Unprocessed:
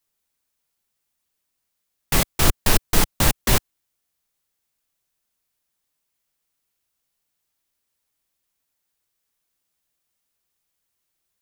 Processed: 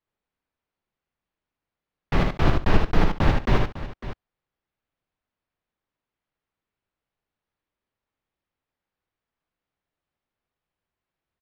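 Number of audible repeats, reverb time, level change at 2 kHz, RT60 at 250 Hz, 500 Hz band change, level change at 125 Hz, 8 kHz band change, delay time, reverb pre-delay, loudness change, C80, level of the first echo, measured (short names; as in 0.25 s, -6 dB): 4, none, -3.5 dB, none, +1.0 dB, +1.5 dB, -26.5 dB, 77 ms, none, -3.5 dB, none, -4.0 dB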